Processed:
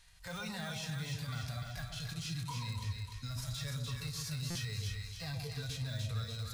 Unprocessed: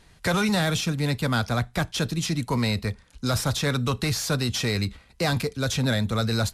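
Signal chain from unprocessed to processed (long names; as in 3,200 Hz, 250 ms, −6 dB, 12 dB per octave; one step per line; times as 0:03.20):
noise reduction from a noise print of the clip's start 7 dB
de-essing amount 100%
harmonic and percussive parts rebalanced percussive −18 dB
guitar amp tone stack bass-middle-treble 10-0-10
in parallel at +2 dB: output level in coarse steps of 10 dB
on the sum: brickwall limiter −39.5 dBFS, peak gain reduction 15.5 dB
on a send: echo with a time of its own for lows and highs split 1,000 Hz, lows 130 ms, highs 296 ms, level −3.5 dB
on the sum: buffer that repeats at 0:04.50, samples 256, times 8
level +5.5 dB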